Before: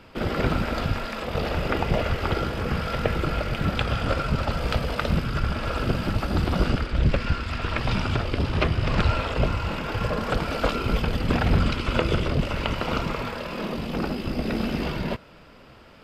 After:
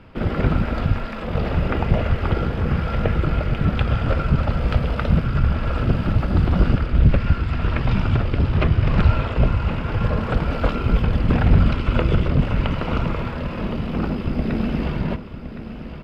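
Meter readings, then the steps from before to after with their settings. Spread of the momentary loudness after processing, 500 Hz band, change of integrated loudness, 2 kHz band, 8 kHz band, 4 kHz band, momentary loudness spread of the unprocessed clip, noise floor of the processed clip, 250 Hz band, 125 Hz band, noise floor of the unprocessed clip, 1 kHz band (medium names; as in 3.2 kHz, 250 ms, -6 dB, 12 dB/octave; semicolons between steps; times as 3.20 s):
7 LU, +1.0 dB, +4.5 dB, -0.5 dB, under -10 dB, -3.5 dB, 5 LU, -32 dBFS, +4.5 dB, +7.0 dB, -49 dBFS, +0.5 dB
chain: tone controls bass +7 dB, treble -12 dB; on a send: feedback delay 1065 ms, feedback 40%, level -11.5 dB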